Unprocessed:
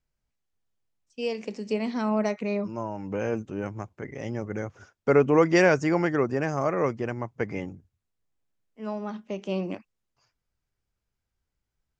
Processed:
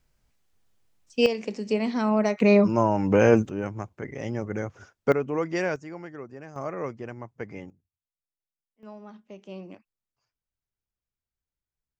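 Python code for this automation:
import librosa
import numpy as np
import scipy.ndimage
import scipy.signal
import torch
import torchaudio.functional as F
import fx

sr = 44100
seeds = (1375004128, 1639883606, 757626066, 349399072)

y = fx.gain(x, sr, db=fx.steps((0.0, 11.5), (1.26, 2.5), (2.4, 11.0), (3.49, 1.5), (5.12, -8.0), (5.76, -15.5), (6.56, -7.0), (7.7, -19.5), (8.83, -11.0)))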